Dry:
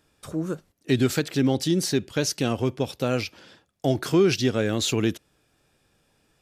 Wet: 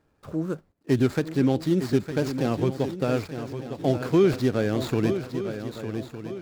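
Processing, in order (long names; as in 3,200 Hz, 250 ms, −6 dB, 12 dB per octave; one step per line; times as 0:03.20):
running median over 15 samples
feedback echo with a long and a short gap by turns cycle 1,209 ms, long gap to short 3 to 1, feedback 38%, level −9.5 dB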